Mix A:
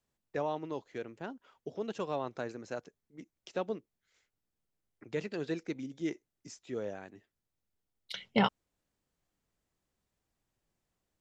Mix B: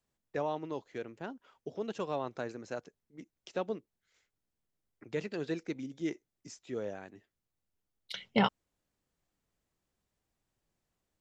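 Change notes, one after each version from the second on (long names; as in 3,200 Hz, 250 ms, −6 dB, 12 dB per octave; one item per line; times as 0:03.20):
nothing changed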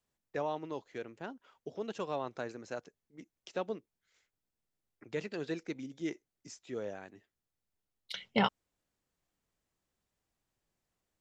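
master: add low-shelf EQ 480 Hz −3 dB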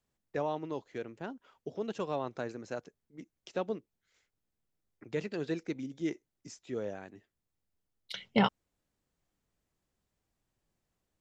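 master: add low-shelf EQ 420 Hz +5 dB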